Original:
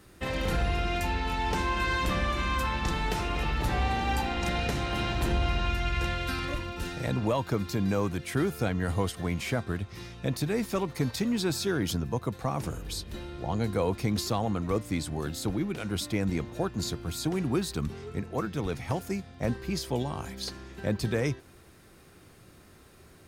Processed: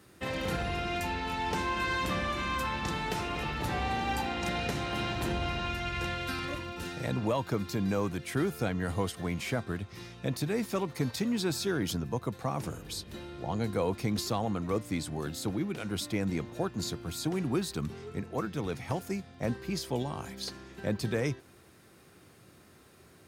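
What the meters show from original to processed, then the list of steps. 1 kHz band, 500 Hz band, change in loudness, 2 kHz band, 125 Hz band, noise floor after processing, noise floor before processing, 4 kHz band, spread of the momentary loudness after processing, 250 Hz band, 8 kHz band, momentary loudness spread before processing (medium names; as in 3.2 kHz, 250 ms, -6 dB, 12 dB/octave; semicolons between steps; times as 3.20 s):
-2.0 dB, -2.0 dB, -2.5 dB, -2.0 dB, -4.0 dB, -58 dBFS, -55 dBFS, -2.0 dB, 7 LU, -2.0 dB, -2.0 dB, 7 LU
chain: high-pass 92 Hz 12 dB/octave; trim -2 dB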